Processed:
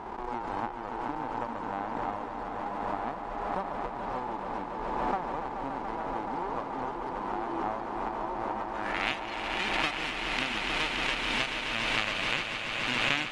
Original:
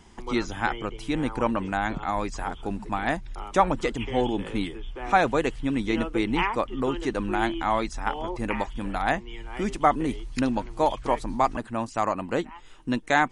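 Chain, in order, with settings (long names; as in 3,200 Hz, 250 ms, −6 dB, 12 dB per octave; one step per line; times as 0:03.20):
spectral envelope flattened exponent 0.1
downward compressor, threshold −25 dBFS, peak gain reduction 11 dB
power curve on the samples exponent 1.4
low-pass filter sweep 910 Hz → 2,700 Hz, 0:08.57–0:09.10
on a send: echo that builds up and dies away 143 ms, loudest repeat 5, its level −10 dB
on the sum: background raised ahead of every attack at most 23 dB per second
level +1.5 dB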